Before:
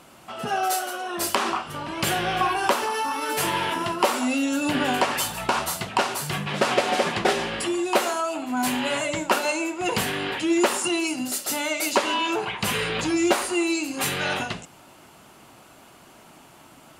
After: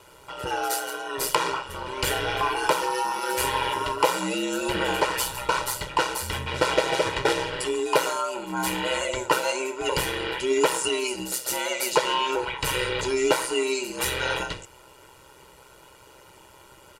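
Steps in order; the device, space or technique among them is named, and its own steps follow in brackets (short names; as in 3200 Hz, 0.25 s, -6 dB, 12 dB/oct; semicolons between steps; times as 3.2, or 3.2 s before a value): ring-modulated robot voice (ring modulator 64 Hz; comb 2.1 ms, depth 79%)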